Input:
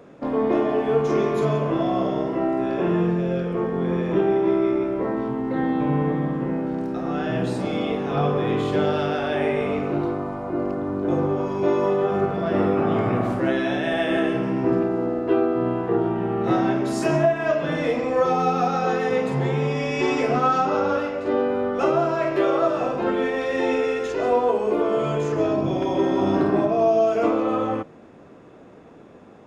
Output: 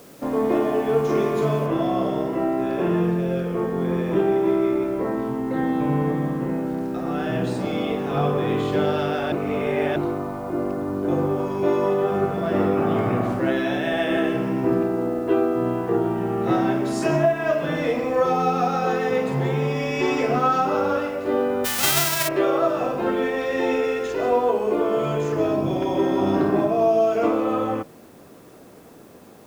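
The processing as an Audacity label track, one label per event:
1.660000	1.660000	noise floor step -52 dB -58 dB
9.320000	9.960000	reverse
21.640000	22.270000	spectral whitening exponent 0.1

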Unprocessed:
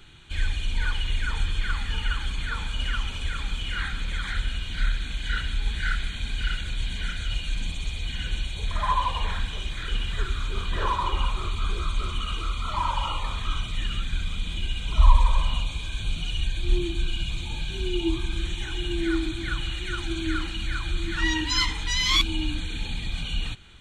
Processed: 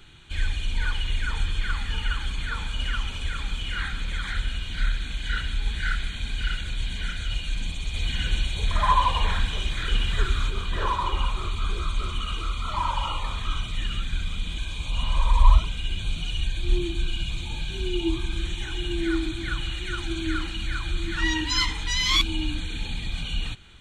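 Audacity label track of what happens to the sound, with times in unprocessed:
7.940000	10.500000	gain +4 dB
14.580000	15.990000	reverse

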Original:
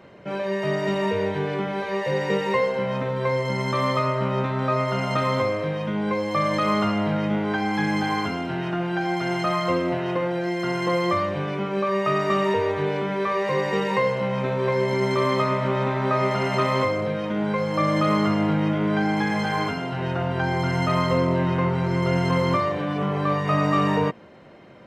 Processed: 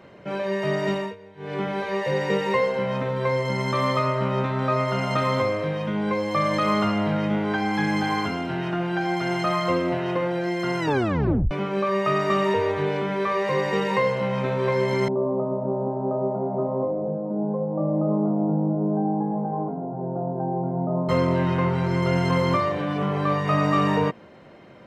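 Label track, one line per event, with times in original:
0.910000	1.620000	dip -21.5 dB, fades 0.25 s
10.790000	10.790000	tape stop 0.72 s
15.080000	21.090000	elliptic band-pass 150–800 Hz, stop band 50 dB

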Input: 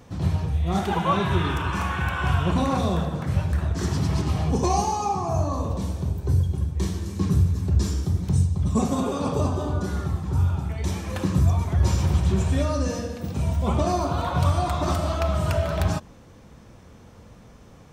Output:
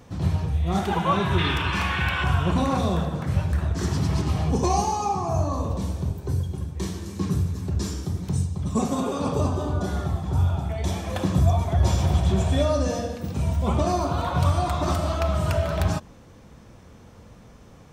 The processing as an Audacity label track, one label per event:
1.380000	2.240000	band shelf 3000 Hz +8 dB
6.110000	9.180000	low shelf 81 Hz -11.5 dB
9.800000	13.160000	small resonant body resonances 680/3400 Hz, height 10 dB, ringing for 20 ms

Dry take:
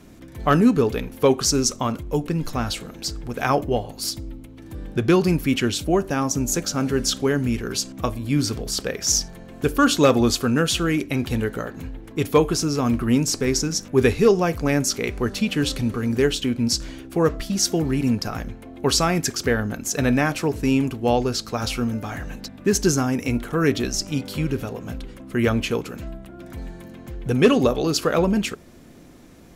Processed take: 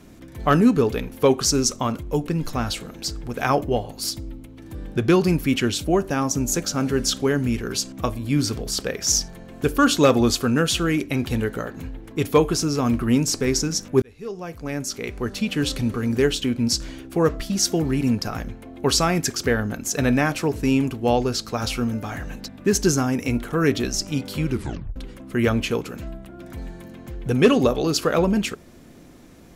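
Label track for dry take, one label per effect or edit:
14.020000	15.790000	fade in
24.500000	24.500000	tape stop 0.46 s

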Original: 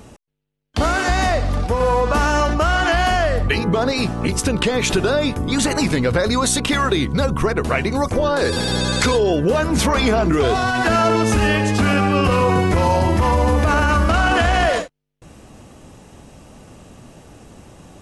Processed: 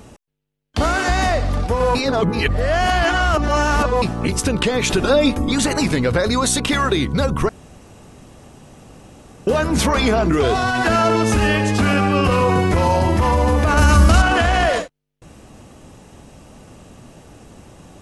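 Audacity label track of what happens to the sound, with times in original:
1.950000	4.020000	reverse
5.020000	5.520000	comb 3.7 ms, depth 90%
7.490000	9.470000	room tone
13.770000	14.220000	tone controls bass +7 dB, treble +11 dB

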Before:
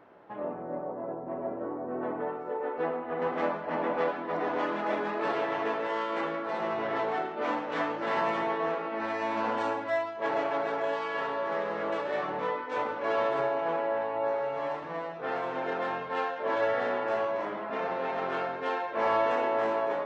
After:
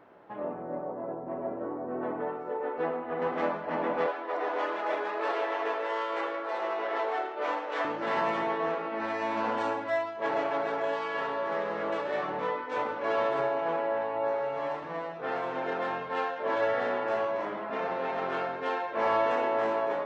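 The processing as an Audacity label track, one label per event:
4.060000	7.850000	HPF 360 Hz 24 dB/oct

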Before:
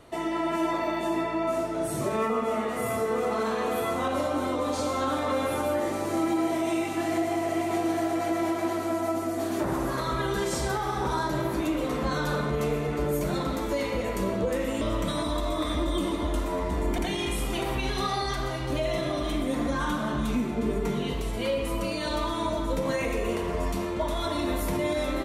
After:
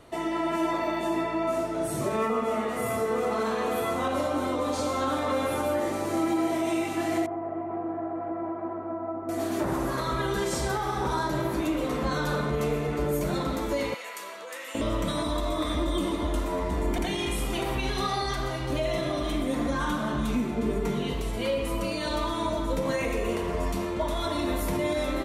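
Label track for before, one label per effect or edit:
7.260000	9.290000	ladder low-pass 1500 Hz, resonance 25%
13.940000	14.750000	HPF 1200 Hz

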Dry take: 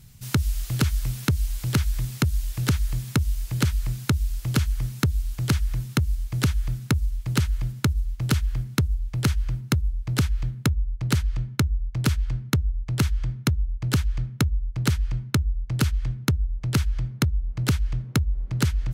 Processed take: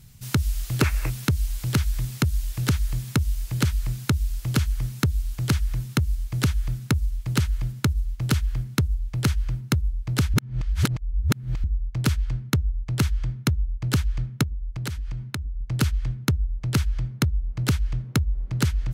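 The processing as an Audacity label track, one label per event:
0.820000	1.100000	spectral gain 260–2800 Hz +11 dB
10.340000	11.640000	reverse
14.430000	15.610000	compressor 12:1, threshold -26 dBFS

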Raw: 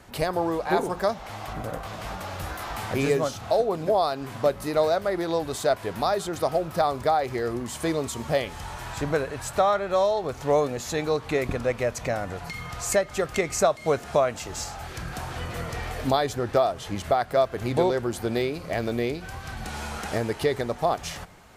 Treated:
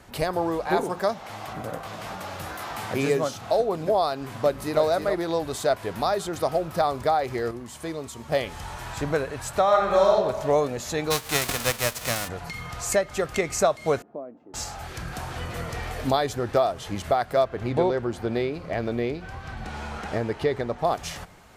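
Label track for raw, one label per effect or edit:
0.840000	3.520000	HPF 110 Hz
4.200000	4.820000	echo throw 0.32 s, feedback 10%, level -7.5 dB
7.510000	8.320000	gain -6.5 dB
9.640000	10.140000	reverb throw, RT60 1.3 s, DRR -0.5 dB
11.100000	12.270000	spectral whitening exponent 0.3
14.020000	14.540000	ladder band-pass 310 Hz, resonance 55%
17.440000	20.850000	bell 13000 Hz -15 dB 1.7 oct

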